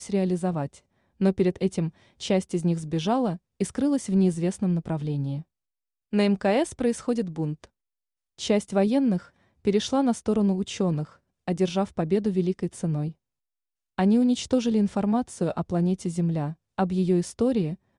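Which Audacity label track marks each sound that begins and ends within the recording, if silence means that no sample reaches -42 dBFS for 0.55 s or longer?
6.130000	7.650000	sound
8.390000	13.120000	sound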